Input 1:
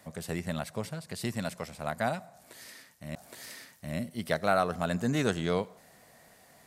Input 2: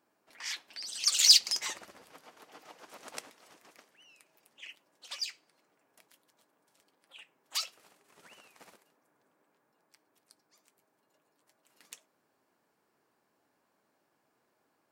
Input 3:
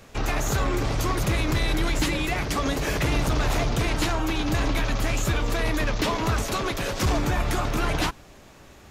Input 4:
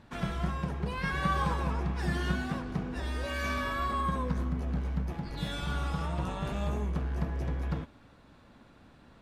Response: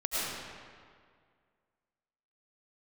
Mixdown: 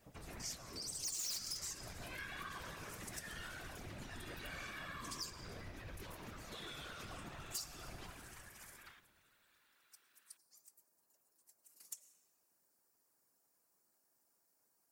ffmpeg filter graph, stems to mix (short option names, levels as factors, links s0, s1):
-filter_complex "[0:a]acompressor=threshold=0.0251:ratio=6,volume=0.266[s0];[1:a]aexciter=amount=5.5:drive=7.2:freq=4900,volume=0.501,asplit=2[s1][s2];[s2]volume=0.0708[s3];[2:a]aecho=1:1:5.6:0.65,acompressor=threshold=0.0562:ratio=6,volume=0.112,asplit=2[s4][s5];[s5]volume=0.282[s6];[3:a]highpass=f=1400:w=0.5412,highpass=f=1400:w=1.3066,adelay=1150,volume=0.794[s7];[4:a]atrim=start_sample=2205[s8];[s3][s6]amix=inputs=2:normalize=0[s9];[s9][s8]afir=irnorm=-1:irlink=0[s10];[s0][s1][s4][s7][s10]amix=inputs=5:normalize=0,volume=11.2,asoftclip=hard,volume=0.0891,afftfilt=real='hypot(re,im)*cos(2*PI*random(0))':imag='hypot(re,im)*sin(2*PI*random(1))':win_size=512:overlap=0.75,acompressor=threshold=0.00562:ratio=2.5"